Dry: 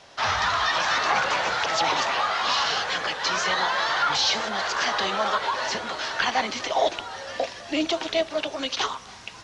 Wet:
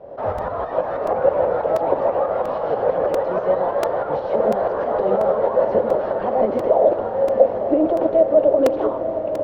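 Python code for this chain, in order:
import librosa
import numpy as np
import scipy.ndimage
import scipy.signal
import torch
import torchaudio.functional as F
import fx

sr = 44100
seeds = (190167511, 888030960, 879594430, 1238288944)

p1 = fx.over_compress(x, sr, threshold_db=-28.0, ratio=-1.0)
p2 = x + (p1 * librosa.db_to_amplitude(0.5))
p3 = fx.fold_sine(p2, sr, drive_db=7, ceiling_db=-6.0)
p4 = fx.tremolo_shape(p3, sr, shape='saw_up', hz=6.2, depth_pct=55)
p5 = fx.lowpass_res(p4, sr, hz=540.0, q=4.4)
p6 = p5 + fx.echo_diffused(p5, sr, ms=965, feedback_pct=64, wet_db=-9.0, dry=0)
p7 = fx.buffer_crackle(p6, sr, first_s=0.38, period_s=0.69, block=128, kind='repeat')
y = p7 * librosa.db_to_amplitude(-6.5)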